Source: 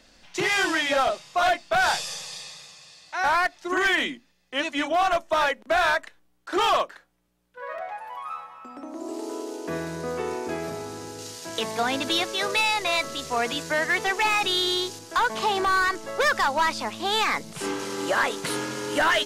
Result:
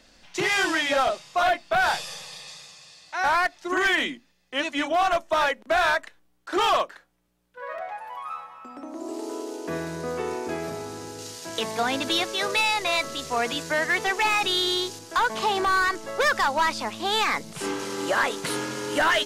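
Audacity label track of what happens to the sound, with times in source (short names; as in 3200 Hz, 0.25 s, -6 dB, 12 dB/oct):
1.420000	2.480000	dynamic EQ 6800 Hz, up to -6 dB, over -45 dBFS, Q 0.9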